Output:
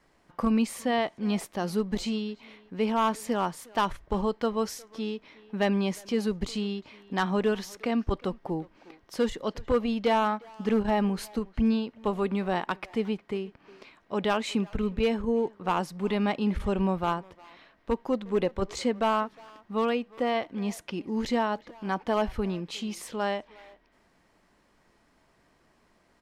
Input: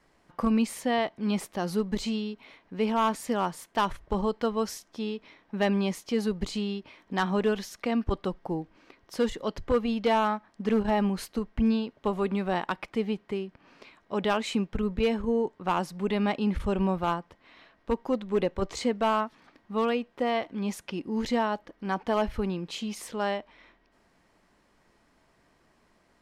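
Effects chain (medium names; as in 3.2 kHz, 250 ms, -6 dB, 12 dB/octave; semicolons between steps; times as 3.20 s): speakerphone echo 360 ms, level -19 dB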